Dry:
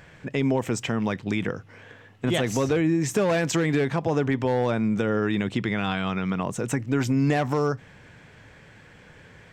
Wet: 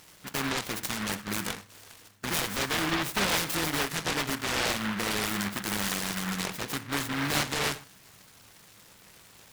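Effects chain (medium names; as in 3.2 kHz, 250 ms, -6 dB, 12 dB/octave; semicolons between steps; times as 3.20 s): low-pass 2.7 kHz 6 dB/octave; tilt EQ +3 dB/octave; on a send at -10.5 dB: reverberation, pre-delay 5 ms; on the sum: delay time shaken by noise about 1.4 kHz, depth 0.48 ms; trim -3 dB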